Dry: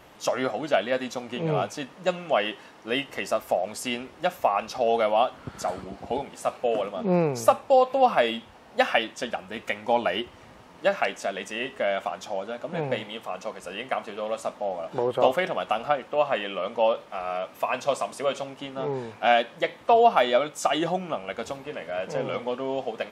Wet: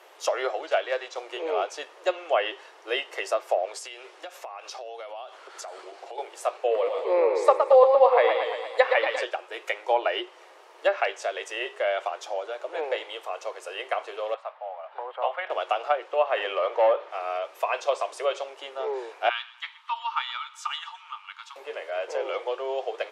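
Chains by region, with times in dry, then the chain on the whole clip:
0:00.62–0:01.18: one scale factor per block 5 bits + high-pass filter 390 Hz 6 dB per octave + high-frequency loss of the air 87 metres
0:03.78–0:06.18: low-pass filter 8,500 Hz + spectral tilt +1.5 dB per octave + downward compressor 16 to 1, threshold −34 dBFS
0:06.70–0:09.23: EQ curve with evenly spaced ripples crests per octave 0.98, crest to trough 9 dB + feedback echo with a swinging delay time 116 ms, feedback 62%, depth 100 cents, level −5.5 dB
0:14.34–0:15.50: high-pass filter 710 Hz 24 dB per octave + high-frequency loss of the air 430 metres
0:16.37–0:17.11: high-shelf EQ 10,000 Hz +5.5 dB + mid-hump overdrive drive 15 dB, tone 1,200 Hz, clips at −11 dBFS
0:19.29–0:21.56: Chebyshev high-pass with heavy ripple 880 Hz, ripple 6 dB + high-shelf EQ 6,600 Hz −10.5 dB + repeating echo 123 ms, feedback 45%, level −18.5 dB
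whole clip: Butterworth high-pass 350 Hz 72 dB per octave; treble cut that deepens with the level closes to 2,700 Hz, closed at −17.5 dBFS

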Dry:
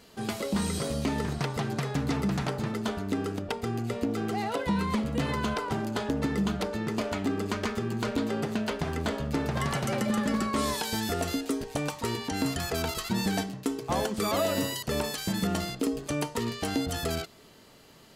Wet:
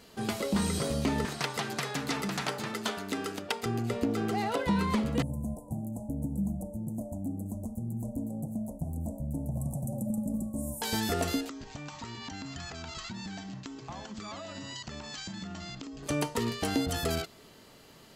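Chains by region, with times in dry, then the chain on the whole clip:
0:01.25–0:03.66: Bessel high-pass filter 180 Hz + tilt shelving filter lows −5 dB, about 940 Hz
0:05.22–0:10.82: inverse Chebyshev band-stop filter 1,400–4,000 Hz, stop band 60 dB + phaser with its sweep stopped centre 1,000 Hz, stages 4
0:11.49–0:16.03: Butterworth low-pass 7,600 Hz 96 dB per octave + downward compressor 12 to 1, threshold −35 dBFS + parametric band 460 Hz −12.5 dB 0.64 octaves
whole clip: no processing

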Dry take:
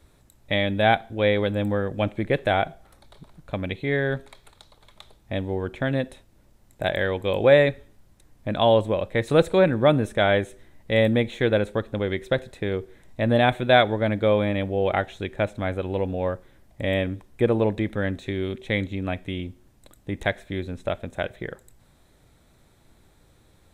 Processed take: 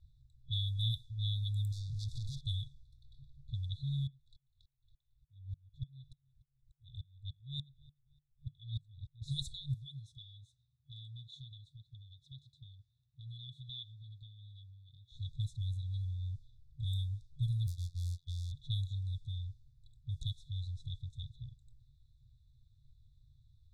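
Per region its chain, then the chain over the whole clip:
0:01.72–0:02.41: gain into a clipping stage and back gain 21 dB + downward compressor, threshold −35 dBFS + leveller curve on the samples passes 5
0:04.07–0:09.22: repeating echo 295 ms, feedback 41%, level −22 dB + tremolo with a ramp in dB swelling 3.4 Hz, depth 37 dB
0:09.74–0:15.12: high-pass filter 210 Hz + downward compressor 2 to 1, threshold −30 dBFS + one half of a high-frequency compander decoder only
0:17.67–0:18.52: hold until the input has moved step −36.5 dBFS + downward expander −31 dBFS + phases set to zero 87.8 Hz
whole clip: brick-wall band-stop 150–3,400 Hz; low-pass that shuts in the quiet parts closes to 1,900 Hz, open at −27 dBFS; level −3.5 dB

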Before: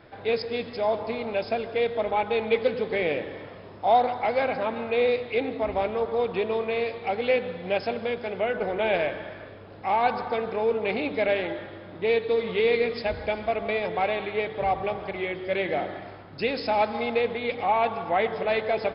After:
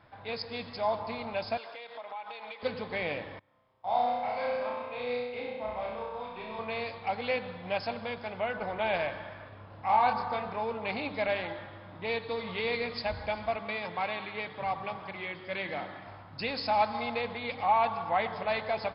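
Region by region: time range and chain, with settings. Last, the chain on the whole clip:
0:01.57–0:02.63: high-pass filter 520 Hz + high-shelf EQ 4,000 Hz +6.5 dB + downward compressor 10 to 1, threshold −33 dBFS
0:03.39–0:06.59: noise gate −34 dBFS, range −18 dB + tuned comb filter 130 Hz, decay 0.71 s, mix 70% + flutter between parallel walls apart 5.6 metres, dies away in 1.1 s
0:09.49–0:10.57: high-frequency loss of the air 75 metres + double-tracking delay 28 ms −5 dB
0:13.57–0:16.07: high-pass filter 130 Hz + parametric band 690 Hz −5.5 dB 0.69 octaves
whole clip: graphic EQ with 15 bands 100 Hz +4 dB, 400 Hz −10 dB, 1,000 Hz +7 dB; automatic gain control gain up to 3 dB; dynamic equaliser 4,500 Hz, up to +8 dB, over −55 dBFS, Q 4.3; level −8 dB

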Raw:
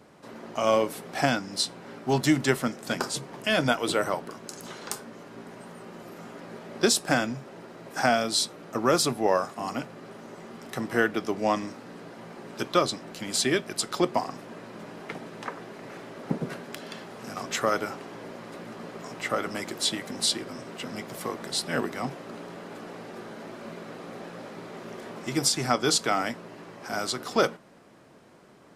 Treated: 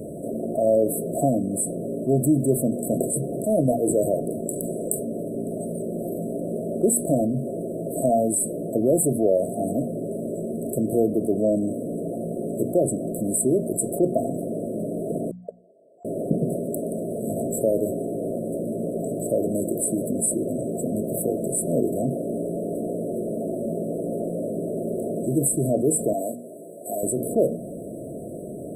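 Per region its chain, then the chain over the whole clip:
0:15.31–0:16.05: noise gate −31 dBFS, range −48 dB + three-way crossover with the lows and the highs turned down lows −21 dB, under 490 Hz, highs −22 dB, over 5,600 Hz
0:26.13–0:27.03: high-pass filter 1,200 Hz 6 dB per octave + noise gate −46 dBFS, range −12 dB
whole clip: mains-hum notches 60/120/180/240 Hz; brick-wall band-stop 700–7,700 Hz; envelope flattener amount 50%; level +2 dB

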